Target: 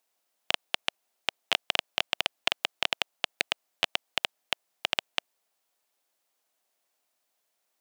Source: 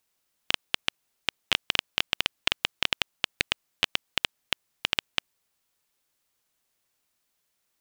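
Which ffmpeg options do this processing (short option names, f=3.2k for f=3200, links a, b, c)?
-af "highpass=250,equalizer=f=690:w=2:g=8,volume=-2dB"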